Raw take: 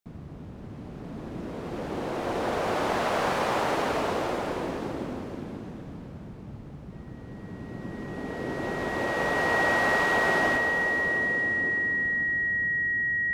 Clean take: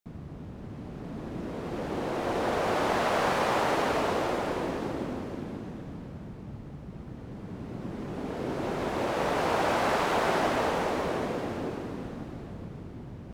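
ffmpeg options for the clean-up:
ffmpeg -i in.wav -af "bandreject=frequency=1900:width=30,asetnsamples=nb_out_samples=441:pad=0,asendcmd='10.57 volume volume 3.5dB',volume=0dB" out.wav

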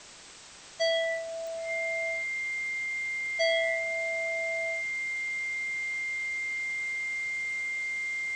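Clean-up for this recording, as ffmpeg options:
ffmpeg -i in.wav -af "adeclick=threshold=4,bandreject=frequency=2100:width=30,afftdn=noise_reduction=30:noise_floor=-37" out.wav

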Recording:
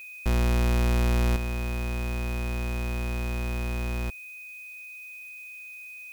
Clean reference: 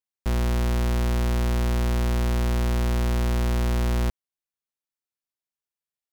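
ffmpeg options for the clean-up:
ffmpeg -i in.wav -af "bandreject=frequency=2500:width=30,agate=range=-21dB:threshold=-35dB,asetnsamples=nb_out_samples=441:pad=0,asendcmd='1.36 volume volume 7dB',volume=0dB" out.wav

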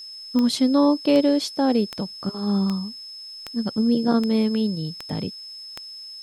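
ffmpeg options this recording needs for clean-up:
ffmpeg -i in.wav -af "adeclick=threshold=4,bandreject=frequency=5200:width=30,agate=range=-21dB:threshold=-31dB" out.wav

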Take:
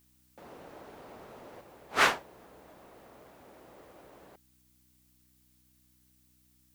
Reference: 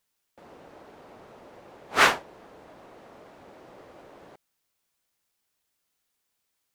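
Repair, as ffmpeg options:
ffmpeg -i in.wav -af "bandreject=frequency=62.8:width_type=h:width=4,bandreject=frequency=125.6:width_type=h:width=4,bandreject=frequency=188.4:width_type=h:width=4,bandreject=frequency=251.2:width_type=h:width=4,bandreject=frequency=314:width_type=h:width=4,agate=range=-21dB:threshold=-59dB,asetnsamples=nb_out_samples=441:pad=0,asendcmd='1.61 volume volume 5dB',volume=0dB" out.wav

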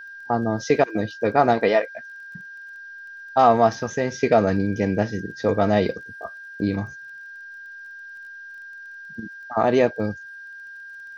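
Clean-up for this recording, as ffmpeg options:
ffmpeg -i in.wav -af "adeclick=threshold=4,bandreject=frequency=1600:width=30,agate=range=-21dB:threshold=-32dB" out.wav

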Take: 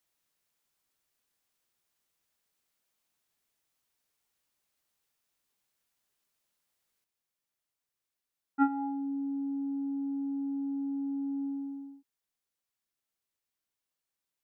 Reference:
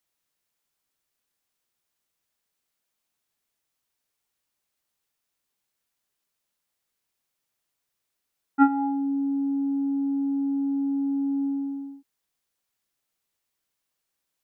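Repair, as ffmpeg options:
ffmpeg -i in.wav -af "asetnsamples=nb_out_samples=441:pad=0,asendcmd='7.04 volume volume 8dB',volume=0dB" out.wav

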